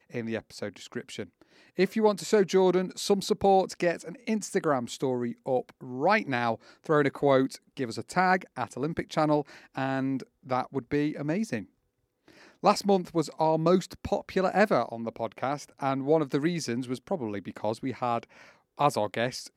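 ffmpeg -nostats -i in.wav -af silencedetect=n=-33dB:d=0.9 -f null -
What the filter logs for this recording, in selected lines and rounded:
silence_start: 11.61
silence_end: 12.63 | silence_duration: 1.03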